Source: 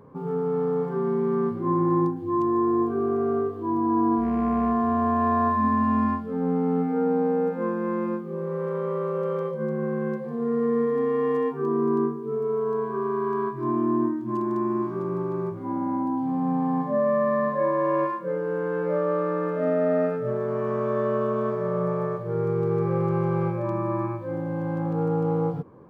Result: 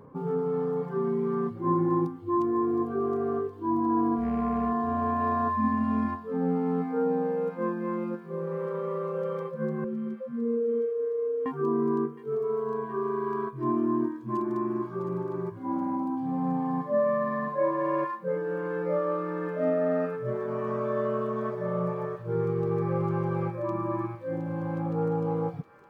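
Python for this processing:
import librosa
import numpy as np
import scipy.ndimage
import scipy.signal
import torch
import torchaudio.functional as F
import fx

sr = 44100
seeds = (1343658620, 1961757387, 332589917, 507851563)

y = fx.spec_expand(x, sr, power=3.9, at=(9.84, 11.46))
y = fx.dereverb_blind(y, sr, rt60_s=1.2)
y = fx.echo_wet_highpass(y, sr, ms=716, feedback_pct=72, hz=1900.0, wet_db=-10)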